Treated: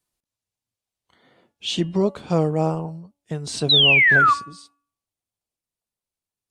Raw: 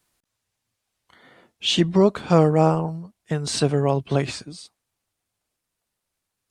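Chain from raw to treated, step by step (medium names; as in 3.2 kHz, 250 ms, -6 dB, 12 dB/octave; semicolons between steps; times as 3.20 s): peaking EQ 1.6 kHz -5.5 dB 1.2 oct; painted sound fall, 3.69–4.34 s, 1.1–4.1 kHz -11 dBFS; de-hum 285.4 Hz, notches 11; spectral noise reduction 6 dB; trim -3.5 dB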